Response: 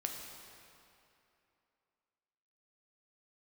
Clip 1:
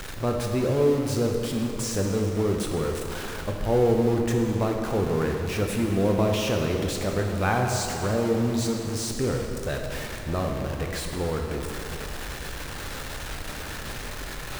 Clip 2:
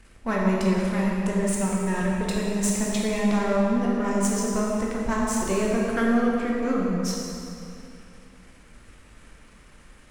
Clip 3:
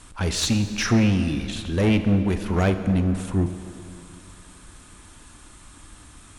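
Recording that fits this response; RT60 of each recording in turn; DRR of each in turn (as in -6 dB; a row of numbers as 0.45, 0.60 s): 1; 2.8, 2.8, 2.7 s; 1.5, -4.0, 8.5 dB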